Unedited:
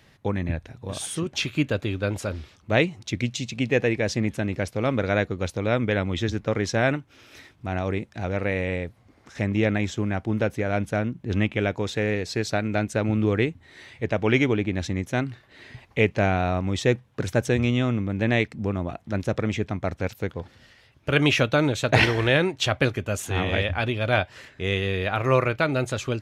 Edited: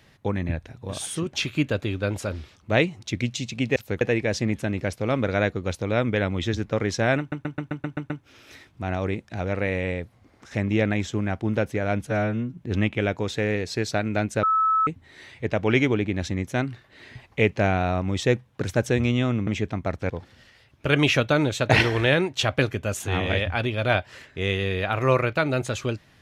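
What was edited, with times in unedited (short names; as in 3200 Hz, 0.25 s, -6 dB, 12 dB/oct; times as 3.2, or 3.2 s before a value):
6.94 stutter 0.13 s, 8 plays
10.91–11.16 stretch 2×
13.02–13.46 bleep 1300 Hz -17.5 dBFS
18.06–19.45 cut
20.08–20.33 move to 3.76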